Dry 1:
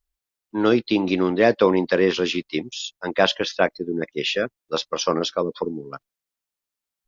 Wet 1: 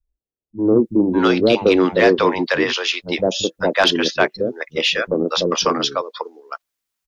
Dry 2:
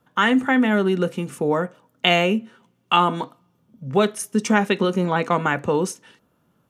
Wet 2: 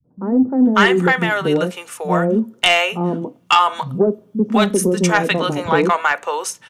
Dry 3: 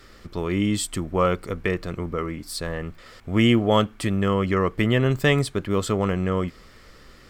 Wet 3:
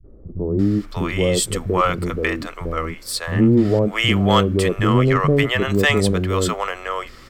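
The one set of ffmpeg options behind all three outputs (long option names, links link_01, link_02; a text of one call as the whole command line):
ffmpeg -i in.wav -filter_complex "[0:a]acrossover=split=170|580[link_01][link_02][link_03];[link_02]adelay=40[link_04];[link_03]adelay=590[link_05];[link_01][link_04][link_05]amix=inputs=3:normalize=0,aeval=exprs='0.75*sin(PI/2*1.78*val(0)/0.75)':channel_layout=same,volume=-2dB" out.wav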